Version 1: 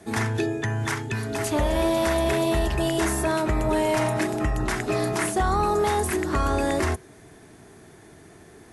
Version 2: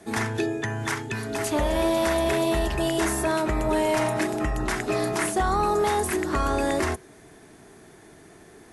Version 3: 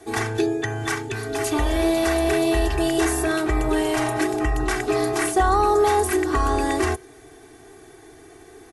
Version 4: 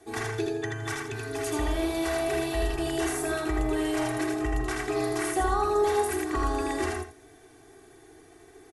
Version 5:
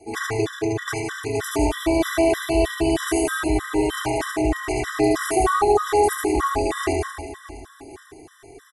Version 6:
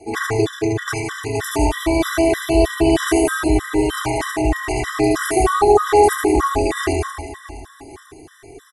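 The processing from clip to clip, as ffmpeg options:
ffmpeg -i in.wav -af "equalizer=frequency=94:width=1:gain=-5.5" out.wav
ffmpeg -i in.wav -af "aecho=1:1:2.6:0.95" out.wav
ffmpeg -i in.wav -af "aecho=1:1:80|164:0.708|0.2,volume=-8.5dB" out.wav
ffmpeg -i in.wav -af "aecho=1:1:70|182|361.2|647.9|1107:0.631|0.398|0.251|0.158|0.1,afftfilt=real='re*gt(sin(2*PI*3.2*pts/sr)*(1-2*mod(floor(b*sr/1024/1000),2)),0)':imag='im*gt(sin(2*PI*3.2*pts/sr)*(1-2*mod(floor(b*sr/1024/1000),2)),0)':win_size=1024:overlap=0.75,volume=7dB" out.wav
ffmpeg -i in.wav -af "aphaser=in_gain=1:out_gain=1:delay=1.1:decay=0.27:speed=0.33:type=sinusoidal,volume=3dB" out.wav

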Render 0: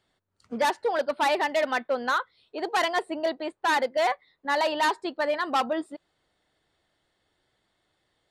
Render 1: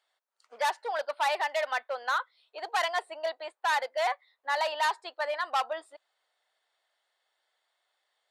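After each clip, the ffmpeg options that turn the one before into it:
ffmpeg -i in.wav -af "highpass=frequency=600:width=0.5412,highpass=frequency=600:width=1.3066,volume=-3dB" out.wav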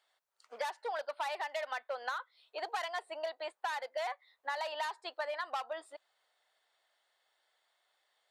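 ffmpeg -i in.wav -af "acompressor=threshold=-35dB:ratio=10,volume=1dB" out.wav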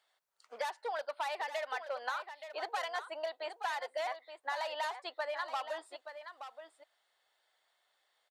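ffmpeg -i in.wav -af "aecho=1:1:874:0.316" out.wav

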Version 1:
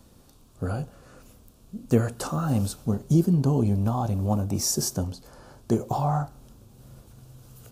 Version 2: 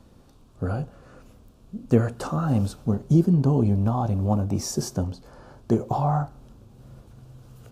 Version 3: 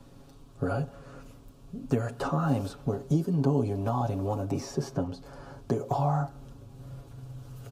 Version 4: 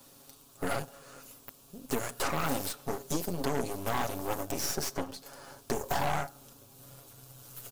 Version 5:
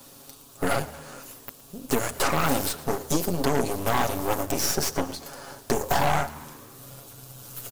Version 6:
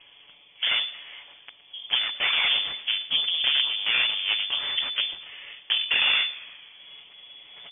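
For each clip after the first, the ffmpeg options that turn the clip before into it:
ffmpeg -i in.wav -af "lowpass=frequency=2600:poles=1,volume=2dB" out.wav
ffmpeg -i in.wav -filter_complex "[0:a]acrossover=split=260|3400[link_01][link_02][link_03];[link_01]acompressor=threshold=-34dB:ratio=4[link_04];[link_02]acompressor=threshold=-28dB:ratio=4[link_05];[link_03]acompressor=threshold=-54dB:ratio=4[link_06];[link_04][link_05][link_06]amix=inputs=3:normalize=0,aecho=1:1:7.2:0.74" out.wav
ffmpeg -i in.wav -af "aemphasis=mode=production:type=riaa,aeval=exprs='0.141*(cos(1*acos(clip(val(0)/0.141,-1,1)))-cos(1*PI/2))+0.0282*(cos(8*acos(clip(val(0)/0.141,-1,1)))-cos(8*PI/2))':channel_layout=same,volume=-1.5dB" out.wav
ffmpeg -i in.wav -filter_complex "[0:a]asplit=7[link_01][link_02][link_03][link_04][link_05][link_06][link_07];[link_02]adelay=114,afreqshift=76,volume=-19.5dB[link_08];[link_03]adelay=228,afreqshift=152,volume=-23.5dB[link_09];[link_04]adelay=342,afreqshift=228,volume=-27.5dB[link_10];[link_05]adelay=456,afreqshift=304,volume=-31.5dB[link_11];[link_06]adelay=570,afreqshift=380,volume=-35.6dB[link_12];[link_07]adelay=684,afreqshift=456,volume=-39.6dB[link_13];[link_01][link_08][link_09][link_10][link_11][link_12][link_13]amix=inputs=7:normalize=0,volume=7.5dB" out.wav
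ffmpeg -i in.wav -af "lowpass=frequency=3000:width_type=q:width=0.5098,lowpass=frequency=3000:width_type=q:width=0.6013,lowpass=frequency=3000:width_type=q:width=0.9,lowpass=frequency=3000:width_type=q:width=2.563,afreqshift=-3500" out.wav

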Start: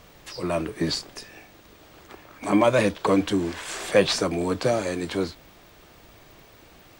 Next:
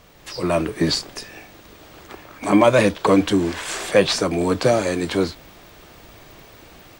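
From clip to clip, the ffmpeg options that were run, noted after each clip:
ffmpeg -i in.wav -af "dynaudnorm=framelen=170:gausssize=3:maxgain=6dB" out.wav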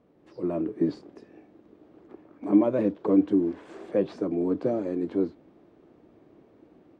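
ffmpeg -i in.wav -af "bandpass=frequency=300:width_type=q:width=1.9:csg=0,volume=-2.5dB" out.wav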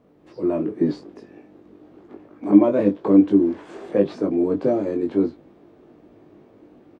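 ffmpeg -i in.wav -filter_complex "[0:a]asplit=2[link_01][link_02];[link_02]adelay=20,volume=-4dB[link_03];[link_01][link_03]amix=inputs=2:normalize=0,volume=4.5dB" out.wav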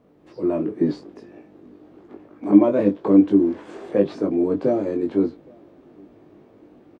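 ffmpeg -i in.wav -filter_complex "[0:a]asplit=2[link_01][link_02];[link_02]adelay=816.3,volume=-29dB,highshelf=frequency=4000:gain=-18.4[link_03];[link_01][link_03]amix=inputs=2:normalize=0" out.wav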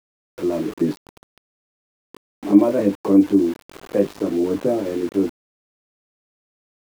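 ffmpeg -i in.wav -af "aeval=exprs='val(0)*gte(abs(val(0)),0.0237)':channel_layout=same" out.wav

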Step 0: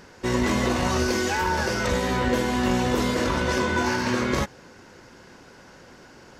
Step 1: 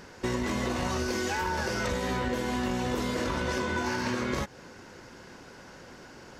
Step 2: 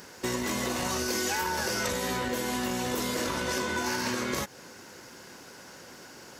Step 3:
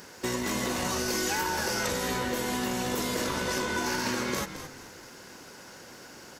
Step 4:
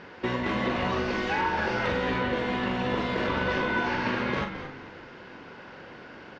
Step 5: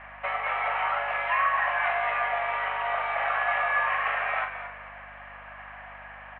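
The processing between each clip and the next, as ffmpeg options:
ffmpeg -i in.wav -af "acompressor=threshold=-27dB:ratio=5" out.wav
ffmpeg -i in.wav -af "highpass=frequency=150:poles=1,aemphasis=mode=production:type=50fm" out.wav
ffmpeg -i in.wav -filter_complex "[0:a]asplit=4[link_01][link_02][link_03][link_04];[link_02]adelay=217,afreqshift=-53,volume=-10.5dB[link_05];[link_03]adelay=434,afreqshift=-106,volume=-20.4dB[link_06];[link_04]adelay=651,afreqshift=-159,volume=-30.3dB[link_07];[link_01][link_05][link_06][link_07]amix=inputs=4:normalize=0" out.wav
ffmpeg -i in.wav -filter_complex "[0:a]lowpass=frequency=3200:width=0.5412,lowpass=frequency=3200:width=1.3066,asplit=2[link_01][link_02];[link_02]adelay=42,volume=-6.5dB[link_03];[link_01][link_03]amix=inputs=2:normalize=0,volume=3dB" out.wav
ffmpeg -i in.wav -af "highpass=frequency=490:width_type=q:width=0.5412,highpass=frequency=490:width_type=q:width=1.307,lowpass=frequency=2400:width_type=q:width=0.5176,lowpass=frequency=2400:width_type=q:width=0.7071,lowpass=frequency=2400:width_type=q:width=1.932,afreqshift=200,aeval=exprs='val(0)+0.00141*(sin(2*PI*50*n/s)+sin(2*PI*2*50*n/s)/2+sin(2*PI*3*50*n/s)/3+sin(2*PI*4*50*n/s)/4+sin(2*PI*5*50*n/s)/5)':channel_layout=same,volume=3.5dB" out.wav

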